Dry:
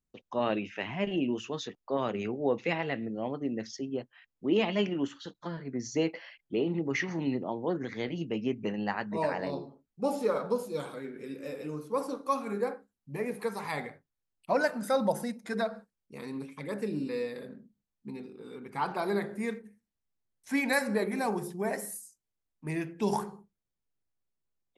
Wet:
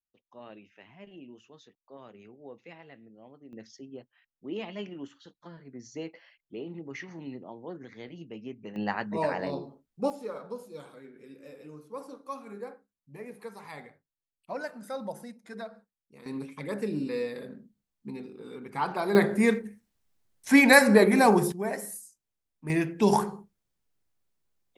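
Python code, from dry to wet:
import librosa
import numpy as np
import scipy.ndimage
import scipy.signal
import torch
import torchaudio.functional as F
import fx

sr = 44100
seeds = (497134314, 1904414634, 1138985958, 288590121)

y = fx.gain(x, sr, db=fx.steps((0.0, -18.0), (3.53, -9.5), (8.76, 1.5), (10.1, -9.0), (16.26, 2.0), (19.15, 11.0), (21.52, 0.5), (22.7, 7.0)))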